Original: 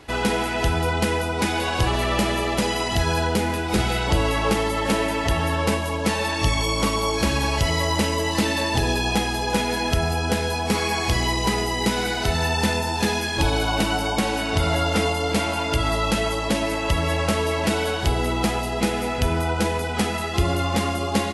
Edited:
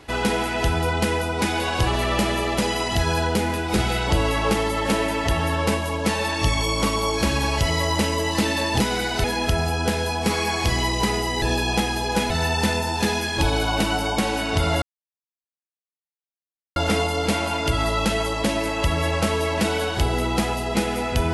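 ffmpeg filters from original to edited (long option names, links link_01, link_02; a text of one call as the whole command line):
ffmpeg -i in.wav -filter_complex "[0:a]asplit=6[link_01][link_02][link_03][link_04][link_05][link_06];[link_01]atrim=end=8.802[link_07];[link_02]atrim=start=11.858:end=12.302[link_08];[link_03]atrim=start=9.678:end=11.862[link_09];[link_04]atrim=start=8.798:end=9.682[link_10];[link_05]atrim=start=12.298:end=14.82,asetpts=PTS-STARTPTS,afade=type=out:start_time=2.518:duration=0.004:curve=hsin,apad=pad_dur=1.94[link_11];[link_06]atrim=start=14.82,asetpts=PTS-STARTPTS,afade=type=in:duration=0.004:curve=hsin[link_12];[link_07][link_08]acrossfade=duration=0.004:curve1=hsin:curve2=hsin[link_13];[link_13][link_09]acrossfade=duration=0.004:curve1=hsin:curve2=hsin[link_14];[link_14][link_10]acrossfade=duration=0.004:curve1=hsin:curve2=hsin[link_15];[link_11][link_12]concat=n=2:v=0:a=1[link_16];[link_15][link_16]acrossfade=duration=0.004:curve1=hsin:curve2=hsin" out.wav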